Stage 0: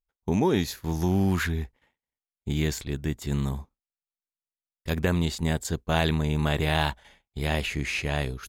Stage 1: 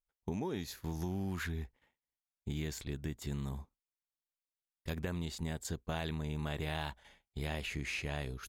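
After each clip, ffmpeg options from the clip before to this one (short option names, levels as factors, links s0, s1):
-af "acompressor=threshold=0.0355:ratio=4,volume=0.501"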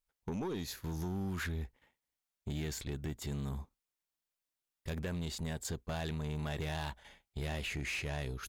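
-af "asoftclip=type=tanh:threshold=0.0168,volume=1.5"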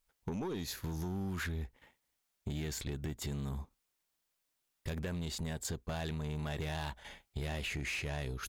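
-af "acompressor=threshold=0.00447:ratio=2.5,volume=2.37"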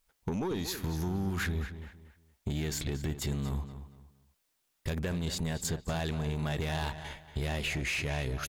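-filter_complex "[0:a]asplit=2[s0][s1];[s1]adelay=232,lowpass=f=4200:p=1,volume=0.282,asplit=2[s2][s3];[s3]adelay=232,lowpass=f=4200:p=1,volume=0.29,asplit=2[s4][s5];[s5]adelay=232,lowpass=f=4200:p=1,volume=0.29[s6];[s0][s2][s4][s6]amix=inputs=4:normalize=0,volume=1.78"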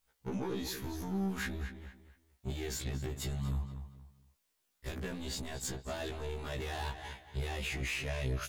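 -af "asoftclip=type=tanh:threshold=0.0398,afftfilt=real='re*1.73*eq(mod(b,3),0)':imag='im*1.73*eq(mod(b,3),0)':win_size=2048:overlap=0.75"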